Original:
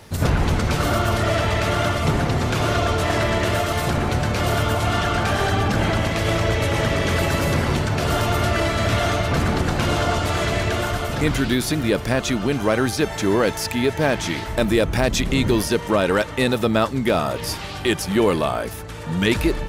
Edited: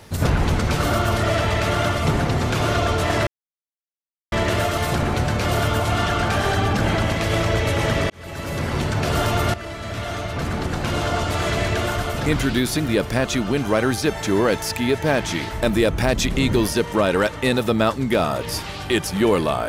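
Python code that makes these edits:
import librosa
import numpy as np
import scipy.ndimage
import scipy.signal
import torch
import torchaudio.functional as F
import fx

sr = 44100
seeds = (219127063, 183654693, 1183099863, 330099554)

y = fx.edit(x, sr, fx.insert_silence(at_s=3.27, length_s=1.05),
    fx.fade_in_span(start_s=7.05, length_s=0.88),
    fx.fade_in_from(start_s=8.49, length_s=2.06, floor_db=-13.5), tone=tone)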